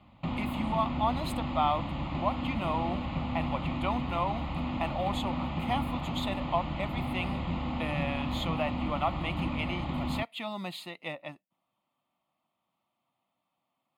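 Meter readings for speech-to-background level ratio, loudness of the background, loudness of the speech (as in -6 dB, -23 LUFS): -0.5 dB, -34.5 LUFS, -35.0 LUFS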